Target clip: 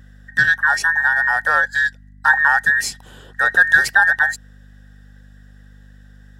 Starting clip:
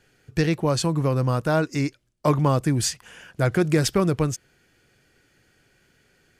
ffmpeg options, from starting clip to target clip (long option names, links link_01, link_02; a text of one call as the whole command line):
ffmpeg -i in.wav -af "afftfilt=real='real(if(between(b,1,1012),(2*floor((b-1)/92)+1)*92-b,b),0)':imag='imag(if(between(b,1,1012),(2*floor((b-1)/92)+1)*92-b,b),0)*if(between(b,1,1012),-1,1)':win_size=2048:overlap=0.75,equalizer=frequency=125:width_type=o:width=0.33:gain=8,equalizer=frequency=315:width_type=o:width=0.33:gain=-7,equalizer=frequency=800:width_type=o:width=0.33:gain=11,equalizer=frequency=1600:width_type=o:width=0.33:gain=9,equalizer=frequency=2500:width_type=o:width=0.33:gain=-4,aeval=exprs='val(0)+0.00708*(sin(2*PI*50*n/s)+sin(2*PI*2*50*n/s)/2+sin(2*PI*3*50*n/s)/3+sin(2*PI*4*50*n/s)/4+sin(2*PI*5*50*n/s)/5)':channel_layout=same" out.wav